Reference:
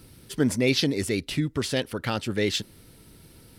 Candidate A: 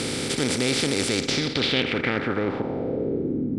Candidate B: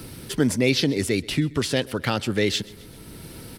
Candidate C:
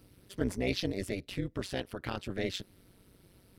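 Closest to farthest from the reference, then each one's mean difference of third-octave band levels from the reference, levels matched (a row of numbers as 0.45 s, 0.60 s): C, B, A; 2.5 dB, 3.5 dB, 12.5 dB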